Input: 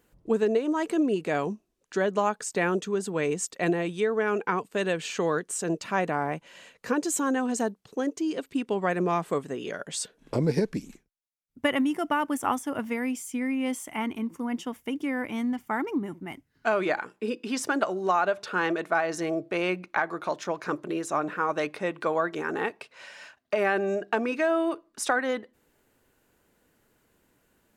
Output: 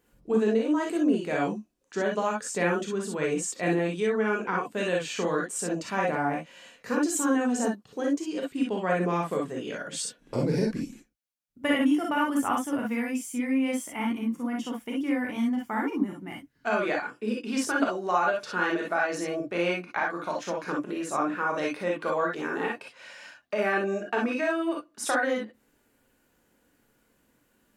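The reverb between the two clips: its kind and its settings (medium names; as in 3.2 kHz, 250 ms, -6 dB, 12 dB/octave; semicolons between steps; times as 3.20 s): gated-style reverb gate 80 ms rising, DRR -1.5 dB; trim -4 dB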